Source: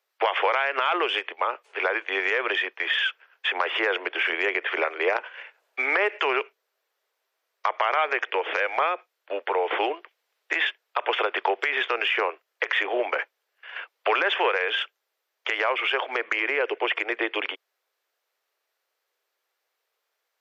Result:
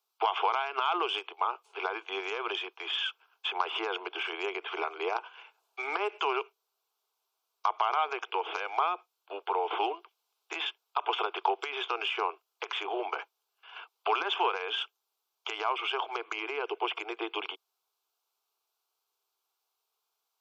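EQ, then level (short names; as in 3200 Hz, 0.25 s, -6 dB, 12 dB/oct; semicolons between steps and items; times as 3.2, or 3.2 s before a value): low shelf 430 Hz -9.5 dB; fixed phaser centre 370 Hz, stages 8; 0.0 dB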